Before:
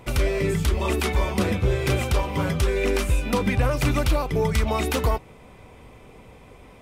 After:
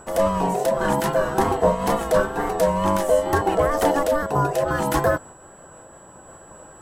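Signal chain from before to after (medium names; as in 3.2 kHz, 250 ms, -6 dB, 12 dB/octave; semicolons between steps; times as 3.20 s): ten-band graphic EQ 125 Hz -5 dB, 250 Hz +3 dB, 1 kHz +4 dB, 2 kHz -11 dB, 4 kHz -6 dB; ring modulator 580 Hz; wow and flutter 51 cents; whistle 7.8 kHz -53 dBFS; random flutter of the level, depth 55%; trim +7.5 dB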